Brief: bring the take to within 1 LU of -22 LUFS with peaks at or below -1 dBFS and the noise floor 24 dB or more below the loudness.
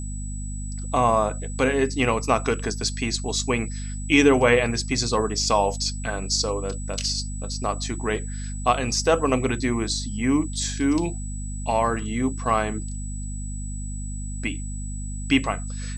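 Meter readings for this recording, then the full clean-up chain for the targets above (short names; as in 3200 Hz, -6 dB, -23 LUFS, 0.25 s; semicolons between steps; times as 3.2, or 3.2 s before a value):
hum 50 Hz; harmonics up to 250 Hz; hum level -29 dBFS; steady tone 7900 Hz; tone level -39 dBFS; loudness -24.5 LUFS; peak -4.5 dBFS; loudness target -22.0 LUFS
-> de-hum 50 Hz, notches 5; notch 7900 Hz, Q 30; gain +2.5 dB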